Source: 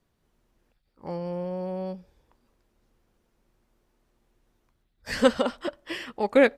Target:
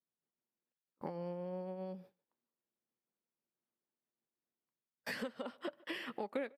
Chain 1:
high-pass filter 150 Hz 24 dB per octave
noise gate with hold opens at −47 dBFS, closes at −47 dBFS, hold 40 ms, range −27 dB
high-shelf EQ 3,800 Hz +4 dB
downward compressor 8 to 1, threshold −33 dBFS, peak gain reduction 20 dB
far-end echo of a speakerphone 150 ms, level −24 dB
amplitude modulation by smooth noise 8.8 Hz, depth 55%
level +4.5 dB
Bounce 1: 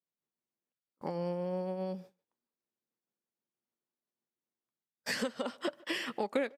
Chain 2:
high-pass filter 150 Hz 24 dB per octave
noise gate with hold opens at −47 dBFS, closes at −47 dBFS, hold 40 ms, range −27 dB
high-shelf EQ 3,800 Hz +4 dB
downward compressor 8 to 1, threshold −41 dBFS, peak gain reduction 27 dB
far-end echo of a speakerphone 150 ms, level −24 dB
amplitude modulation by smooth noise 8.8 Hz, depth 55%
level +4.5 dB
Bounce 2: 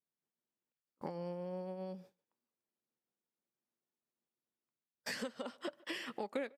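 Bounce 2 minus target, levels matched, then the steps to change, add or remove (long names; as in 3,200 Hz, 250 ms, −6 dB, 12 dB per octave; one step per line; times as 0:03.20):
8,000 Hz band +7.5 dB
add after high-pass filter: parametric band 6,700 Hz −12 dB 1 octave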